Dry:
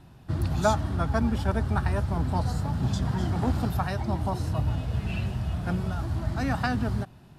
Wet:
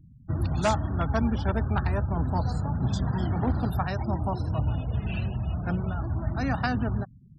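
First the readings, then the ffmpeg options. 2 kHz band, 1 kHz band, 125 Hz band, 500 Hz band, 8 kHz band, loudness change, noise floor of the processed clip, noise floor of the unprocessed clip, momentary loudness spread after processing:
−0.5 dB, −0.5 dB, 0.0 dB, −0.5 dB, can't be measured, 0.0 dB, −52 dBFS, −51 dBFS, 4 LU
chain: -af "aeval=exprs='0.158*(abs(mod(val(0)/0.158+3,4)-2)-1)':channel_layout=same,afftfilt=real='re*gte(hypot(re,im),0.01)':imag='im*gte(hypot(re,im),0.01)':win_size=1024:overlap=0.75"

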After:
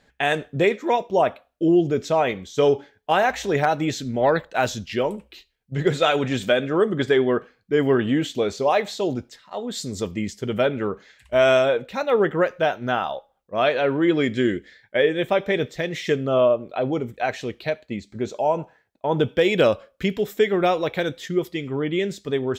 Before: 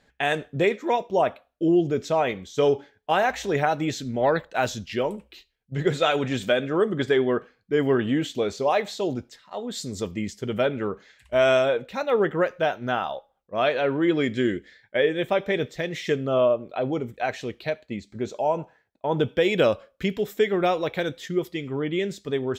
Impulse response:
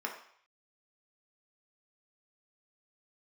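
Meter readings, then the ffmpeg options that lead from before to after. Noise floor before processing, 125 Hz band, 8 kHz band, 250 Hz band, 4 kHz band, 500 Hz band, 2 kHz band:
−68 dBFS, +2.5 dB, +2.5 dB, +2.5 dB, +2.5 dB, +2.5 dB, +2.5 dB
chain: -af "asoftclip=type=hard:threshold=-10.5dB,volume=2.5dB"

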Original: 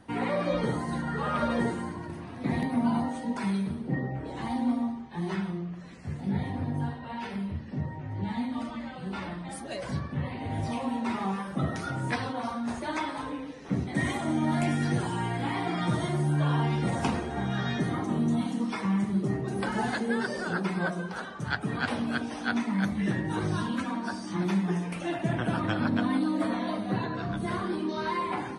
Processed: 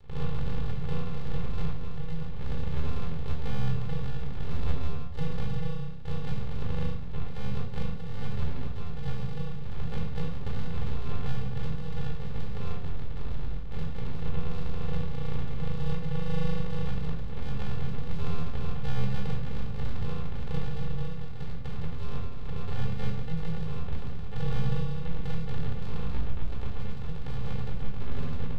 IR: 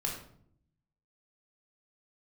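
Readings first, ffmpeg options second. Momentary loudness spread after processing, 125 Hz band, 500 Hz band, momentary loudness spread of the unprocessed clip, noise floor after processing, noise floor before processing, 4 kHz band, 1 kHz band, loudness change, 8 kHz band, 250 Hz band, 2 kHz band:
5 LU, 0.0 dB, −7.0 dB, 8 LU, −28 dBFS, −40 dBFS, −6.0 dB, −12.0 dB, −5.0 dB, below −10 dB, −10.0 dB, −12.0 dB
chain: -filter_complex "[0:a]adynamicequalizer=threshold=0.00794:dfrequency=130:dqfactor=2.4:tfrequency=130:tqfactor=2.4:attack=5:release=100:ratio=0.375:range=2:mode=cutabove:tftype=bell,alimiter=level_in=2dB:limit=-24dB:level=0:latency=1:release=452,volume=-2dB,acompressor=mode=upward:threshold=-51dB:ratio=2.5,aresample=8000,acrusher=samples=25:mix=1:aa=0.000001,aresample=44100,aeval=exprs='max(val(0),0)':channel_layout=same[link_01];[1:a]atrim=start_sample=2205[link_02];[link_01][link_02]afir=irnorm=-1:irlink=0"

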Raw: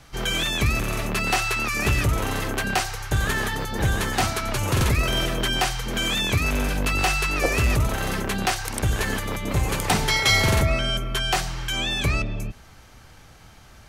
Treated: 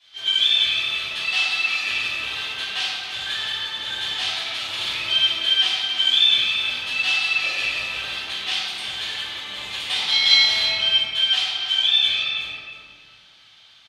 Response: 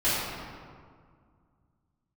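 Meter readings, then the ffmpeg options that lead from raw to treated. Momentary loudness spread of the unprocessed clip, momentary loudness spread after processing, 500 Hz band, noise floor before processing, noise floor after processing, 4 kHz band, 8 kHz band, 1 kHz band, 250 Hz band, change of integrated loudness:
5 LU, 11 LU, −14.5 dB, −49 dBFS, −51 dBFS, +10.0 dB, −8.0 dB, −9.0 dB, −20.0 dB, +3.5 dB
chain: -filter_complex "[0:a]bandpass=frequency=3500:width_type=q:width=4.9:csg=0,asplit=2[link_01][link_02];[link_02]adelay=320.7,volume=-7dB,highshelf=frequency=4000:gain=-7.22[link_03];[link_01][link_03]amix=inputs=2:normalize=0[link_04];[1:a]atrim=start_sample=2205[link_05];[link_04][link_05]afir=irnorm=-1:irlink=0"

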